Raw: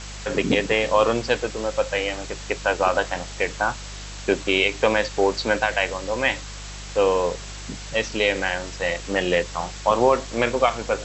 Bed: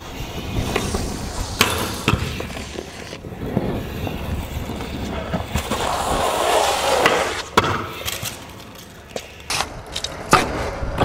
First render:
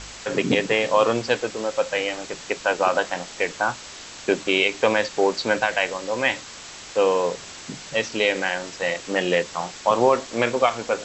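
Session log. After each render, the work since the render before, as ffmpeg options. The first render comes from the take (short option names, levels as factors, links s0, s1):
-af "bandreject=f=50:t=h:w=4,bandreject=f=100:t=h:w=4,bandreject=f=150:t=h:w=4,bandreject=f=200:t=h:w=4"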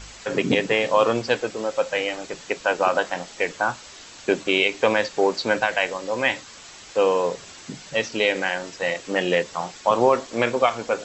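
-af "afftdn=nr=6:nf=-40"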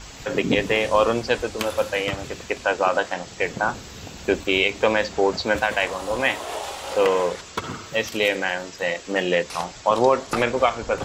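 -filter_complex "[1:a]volume=0.211[s0];[0:a][s0]amix=inputs=2:normalize=0"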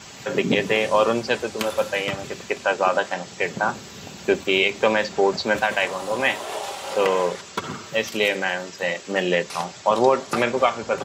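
-af "highpass=f=90:w=0.5412,highpass=f=90:w=1.3066,aecho=1:1:5.1:0.31"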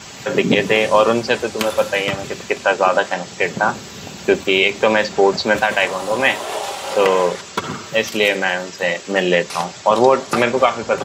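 -af "volume=1.88,alimiter=limit=0.891:level=0:latency=1"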